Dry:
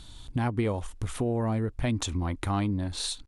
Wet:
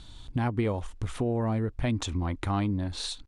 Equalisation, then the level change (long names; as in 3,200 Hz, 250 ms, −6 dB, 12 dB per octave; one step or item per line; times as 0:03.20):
high-frequency loss of the air 50 metres
0.0 dB